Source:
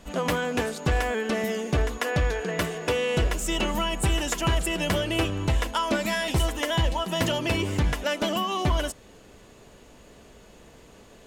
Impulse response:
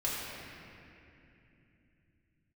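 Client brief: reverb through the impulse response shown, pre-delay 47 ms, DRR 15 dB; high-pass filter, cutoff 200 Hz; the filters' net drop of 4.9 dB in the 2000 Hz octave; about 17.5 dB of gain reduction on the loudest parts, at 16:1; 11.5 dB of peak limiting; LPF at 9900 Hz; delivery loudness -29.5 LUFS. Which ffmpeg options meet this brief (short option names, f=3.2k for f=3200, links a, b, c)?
-filter_complex "[0:a]highpass=200,lowpass=9.9k,equalizer=f=2k:t=o:g=-6.5,acompressor=threshold=-41dB:ratio=16,alimiter=level_in=13.5dB:limit=-24dB:level=0:latency=1,volume=-13.5dB,asplit=2[a][b];[1:a]atrim=start_sample=2205,adelay=47[c];[b][c]afir=irnorm=-1:irlink=0,volume=-21.5dB[d];[a][d]amix=inputs=2:normalize=0,volume=17.5dB"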